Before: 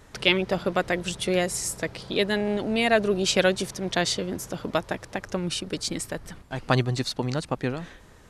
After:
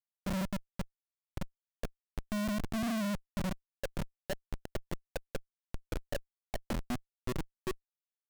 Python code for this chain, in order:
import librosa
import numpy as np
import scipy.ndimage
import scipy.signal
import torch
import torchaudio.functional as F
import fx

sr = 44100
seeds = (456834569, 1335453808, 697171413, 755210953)

y = fx.lower_of_two(x, sr, delay_ms=1.2)
y = fx.auto_wah(y, sr, base_hz=210.0, top_hz=1400.0, q=17.0, full_db=-22.5, direction='down')
y = fx.schmitt(y, sr, flips_db=-41.5)
y = y * 10.0 ** (11.5 / 20.0)